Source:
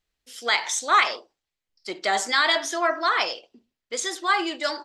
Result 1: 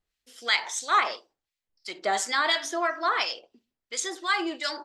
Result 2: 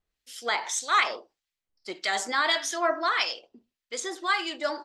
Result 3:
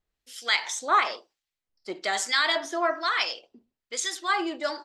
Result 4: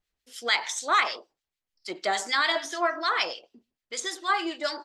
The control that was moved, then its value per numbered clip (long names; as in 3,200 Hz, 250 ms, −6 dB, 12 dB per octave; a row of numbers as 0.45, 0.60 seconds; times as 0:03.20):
two-band tremolo in antiphase, speed: 2.9, 1.7, 1.1, 6.7 Hertz